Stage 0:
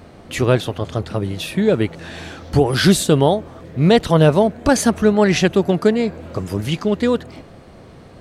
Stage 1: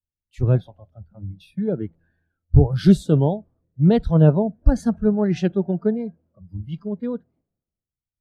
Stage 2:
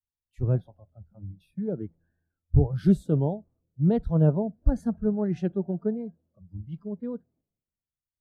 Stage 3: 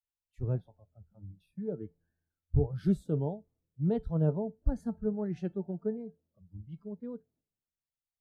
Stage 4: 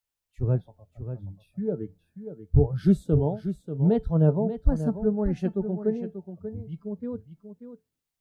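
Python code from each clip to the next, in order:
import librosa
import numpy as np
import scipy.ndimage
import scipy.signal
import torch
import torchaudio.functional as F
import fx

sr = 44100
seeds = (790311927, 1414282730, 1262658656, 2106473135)

y1 = fx.noise_reduce_blind(x, sr, reduce_db=18)
y1 = fx.tilt_eq(y1, sr, slope=-4.5)
y1 = fx.band_widen(y1, sr, depth_pct=100)
y1 = F.gain(torch.from_numpy(y1), -13.5).numpy()
y2 = fx.peak_eq(y1, sr, hz=4100.0, db=-11.0, octaves=2.5)
y2 = F.gain(torch.from_numpy(y2), -6.5).numpy()
y3 = fx.comb_fb(y2, sr, f0_hz=440.0, decay_s=0.2, harmonics='all', damping=0.0, mix_pct=60)
y4 = y3 + 10.0 ** (-10.5 / 20.0) * np.pad(y3, (int(587 * sr / 1000.0), 0))[:len(y3)]
y4 = F.gain(torch.from_numpy(y4), 7.5).numpy()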